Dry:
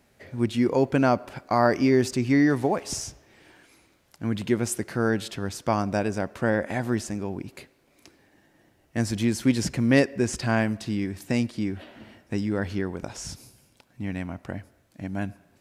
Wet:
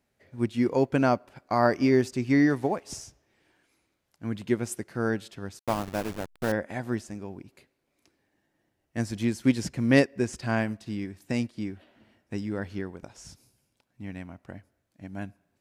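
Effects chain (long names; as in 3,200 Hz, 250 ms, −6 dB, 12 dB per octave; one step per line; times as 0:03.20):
0:05.59–0:06.52: hold until the input has moved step −26 dBFS
expander for the loud parts 1.5 to 1, over −42 dBFS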